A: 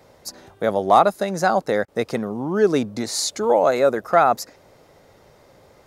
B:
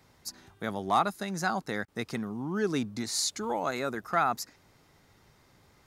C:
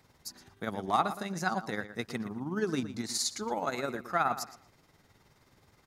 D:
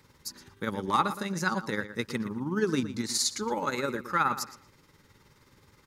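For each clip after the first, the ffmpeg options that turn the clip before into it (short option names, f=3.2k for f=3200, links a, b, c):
-af "equalizer=f=550:w=1.5:g=-14,volume=-5.5dB"
-filter_complex "[0:a]tremolo=f=19:d=0.51,asplit=2[a][b];[b]adelay=117,lowpass=f=4.2k:p=1,volume=-12dB,asplit=2[c][d];[d]adelay=117,lowpass=f=4.2k:p=1,volume=0.26,asplit=2[e][f];[f]adelay=117,lowpass=f=4.2k:p=1,volume=0.26[g];[a][c][e][g]amix=inputs=4:normalize=0"
-af "asuperstop=centerf=700:order=4:qfactor=3.1,volume=4dB"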